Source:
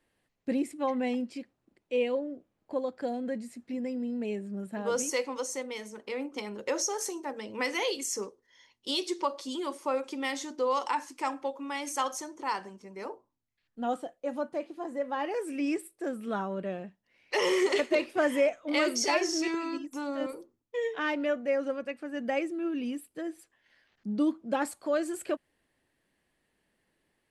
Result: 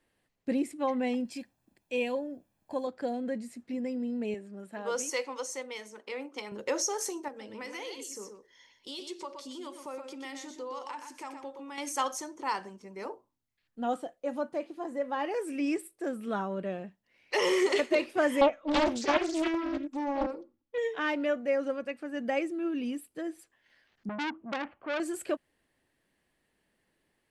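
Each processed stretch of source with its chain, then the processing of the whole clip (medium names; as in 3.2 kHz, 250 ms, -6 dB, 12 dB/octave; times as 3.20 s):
1.25–2.87 s: treble shelf 7 kHz +12 dB + comb 1.2 ms, depth 48%
4.34–6.52 s: high-pass 500 Hz 6 dB/octave + treble shelf 8.2 kHz -5.5 dB
7.28–11.78 s: compression 2:1, threshold -46 dBFS + delay 122 ms -7 dB
18.41–20.78 s: distance through air 200 m + comb 3.6 ms, depth 57% + loudspeaker Doppler distortion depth 0.56 ms
24.09–25.00 s: Chebyshev low-pass 2.9 kHz, order 5 + bass shelf 120 Hz +3 dB + transformer saturation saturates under 2.2 kHz
whole clip: none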